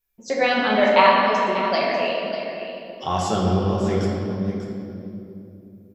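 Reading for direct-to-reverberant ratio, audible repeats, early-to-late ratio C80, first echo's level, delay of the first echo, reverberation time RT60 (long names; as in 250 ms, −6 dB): −4.5 dB, 1, 1.0 dB, −11.5 dB, 592 ms, 3.0 s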